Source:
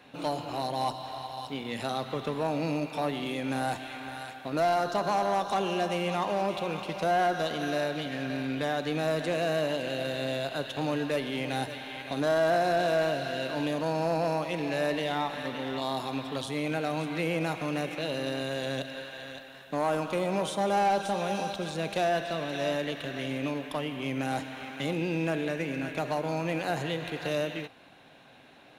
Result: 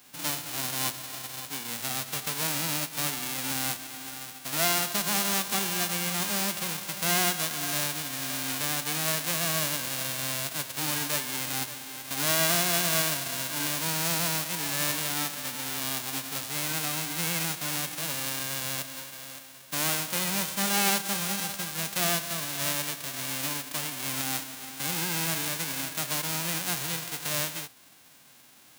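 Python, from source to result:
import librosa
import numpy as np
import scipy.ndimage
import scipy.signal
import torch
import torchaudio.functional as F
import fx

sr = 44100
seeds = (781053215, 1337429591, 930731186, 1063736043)

y = fx.envelope_flatten(x, sr, power=0.1)
y = scipy.signal.sosfilt(scipy.signal.butter(2, 60.0, 'highpass', fs=sr, output='sos'), y)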